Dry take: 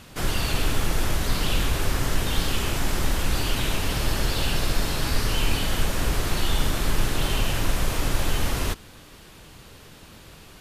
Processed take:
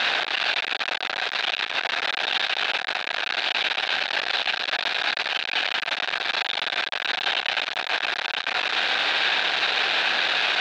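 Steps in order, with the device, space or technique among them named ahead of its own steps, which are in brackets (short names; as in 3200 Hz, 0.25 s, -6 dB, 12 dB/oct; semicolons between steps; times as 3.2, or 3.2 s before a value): home computer beeper (infinite clipping; speaker cabinet 700–4100 Hz, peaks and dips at 740 Hz +7 dB, 1100 Hz -4 dB, 1600 Hz +8 dB, 2500 Hz +6 dB, 3800 Hz +8 dB)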